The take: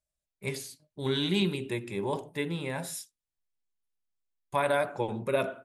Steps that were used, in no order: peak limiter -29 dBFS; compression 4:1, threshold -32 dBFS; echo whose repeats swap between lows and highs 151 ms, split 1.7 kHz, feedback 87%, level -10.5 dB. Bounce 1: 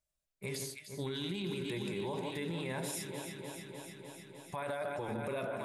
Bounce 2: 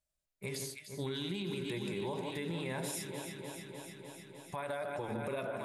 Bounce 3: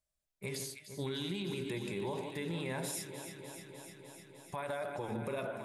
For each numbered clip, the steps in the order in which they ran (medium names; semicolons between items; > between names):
echo whose repeats swap between lows and highs > peak limiter > compression; echo whose repeats swap between lows and highs > compression > peak limiter; compression > echo whose repeats swap between lows and highs > peak limiter